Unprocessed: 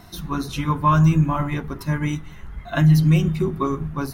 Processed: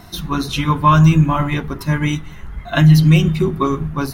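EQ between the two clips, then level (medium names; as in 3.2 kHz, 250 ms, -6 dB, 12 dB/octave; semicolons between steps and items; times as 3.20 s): dynamic bell 3.3 kHz, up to +6 dB, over -44 dBFS, Q 1.2; +5.0 dB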